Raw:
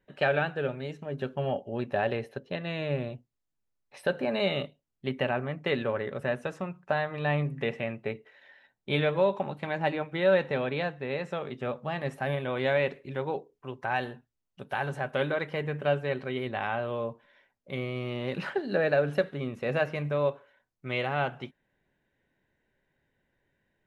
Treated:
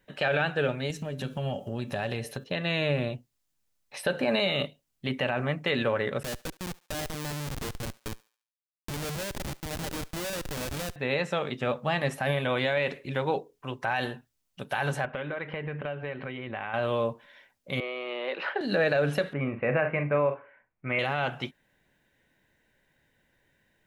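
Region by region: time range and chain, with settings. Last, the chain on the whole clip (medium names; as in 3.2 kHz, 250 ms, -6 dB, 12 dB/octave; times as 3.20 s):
0.90–2.44 s: tone controls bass +8 dB, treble +11 dB + compression 3:1, threshold -35 dBFS + de-hum 145.8 Hz, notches 28
6.23–10.96 s: compression 5:1, threshold -34 dBFS + Schmitt trigger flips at -37 dBFS + thinning echo 71 ms, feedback 39%, high-pass 630 Hz, level -20.5 dB
15.05–16.74 s: compression, threshold -36 dBFS + low-pass 2.8 kHz 24 dB/octave
17.80–18.61 s: high-pass 390 Hz 24 dB/octave + distance through air 330 m
19.33–20.99 s: elliptic low-pass 2.4 kHz, stop band 60 dB + doubling 44 ms -10 dB
whole clip: treble shelf 2.4 kHz +8.5 dB; band-stop 390 Hz, Q 12; peak limiter -20.5 dBFS; trim +4.5 dB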